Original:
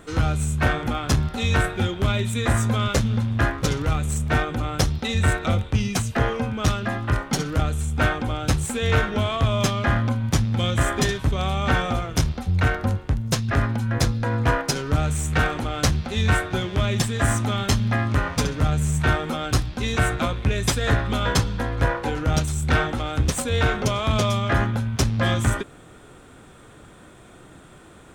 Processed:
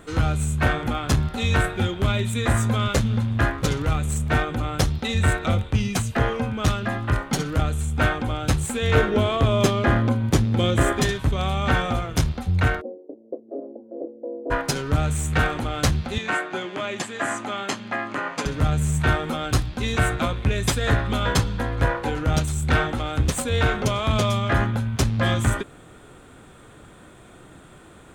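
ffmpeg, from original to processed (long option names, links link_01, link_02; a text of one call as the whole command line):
ffmpeg -i in.wav -filter_complex "[0:a]asettb=1/sr,asplit=3[link_01][link_02][link_03];[link_01]atrim=end=8.954[link_04];[link_02]atrim=start=8.95:end=10.93,asetpts=PTS-STARTPTS,afade=type=in:duration=0.004:curve=qsin,afade=type=out:start_time=1.976:duration=0.004:curve=qsin,equalizer=frequency=380:width_type=o:width=1.1:gain=9[link_05];[link_03]atrim=start=10.926[link_06];[link_04][link_05]acrossfade=duration=0.004:curve1=hsin:curve2=qsin[link_07];[link_07][link_06]acrossfade=duration=0.004:curve1=qsin:curve2=hsin,asplit=3[link_08][link_09][link_10];[link_08]afade=type=out:start_time=12.8:duration=0.02[link_11];[link_09]asuperpass=centerf=420:order=8:qfactor=1.3,afade=type=in:start_time=12.8:duration=0.02,afade=type=out:start_time=14.5:duration=0.02[link_12];[link_10]afade=type=in:start_time=14.5:duration=0.02[link_13];[link_11][link_12][link_13]amix=inputs=3:normalize=0,asettb=1/sr,asplit=3[link_14][link_15][link_16];[link_14]atrim=end=16.184[link_17];[link_15]atrim=start=16.18:end=18.46,asetpts=PTS-STARTPTS,afade=type=in:duration=0.004:curve=qsin,afade=type=out:start_time=2.276:duration=0.004:curve=qsin,highpass=frequency=220:width=0.5412,highpass=frequency=220:width=1.3066,equalizer=frequency=230:width_type=q:width=4:gain=-7,equalizer=frequency=450:width_type=q:width=4:gain=-4,equalizer=frequency=3700:width_type=q:width=4:gain=-6,equalizer=frequency=5500:width_type=q:width=4:gain=-6,equalizer=frequency=8900:width_type=q:width=4:gain=-9,lowpass=frequency=9700:width=0.5412,lowpass=frequency=9700:width=1.3066[link_18];[link_16]atrim=start=18.456[link_19];[link_17][link_18]acrossfade=duration=0.004:curve1=hsin:curve2=qsin[link_20];[link_20][link_19]acrossfade=duration=0.004:curve1=qsin:curve2=hsin,equalizer=frequency=5500:width=4.1:gain=-4" out.wav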